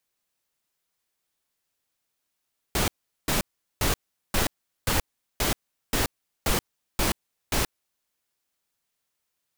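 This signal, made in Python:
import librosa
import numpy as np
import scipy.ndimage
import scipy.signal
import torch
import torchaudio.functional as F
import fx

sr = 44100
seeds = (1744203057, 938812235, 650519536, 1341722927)

y = fx.noise_burst(sr, seeds[0], colour='pink', on_s=0.13, off_s=0.4, bursts=10, level_db=-23.5)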